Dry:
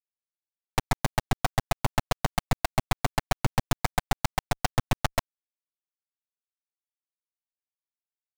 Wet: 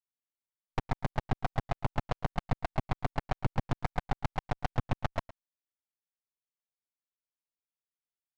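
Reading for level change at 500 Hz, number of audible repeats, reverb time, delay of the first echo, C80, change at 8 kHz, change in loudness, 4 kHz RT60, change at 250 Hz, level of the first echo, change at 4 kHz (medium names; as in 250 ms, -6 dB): -5.5 dB, 1, no reverb, 113 ms, no reverb, under -20 dB, -6.0 dB, no reverb, -4.5 dB, -18.5 dB, -13.5 dB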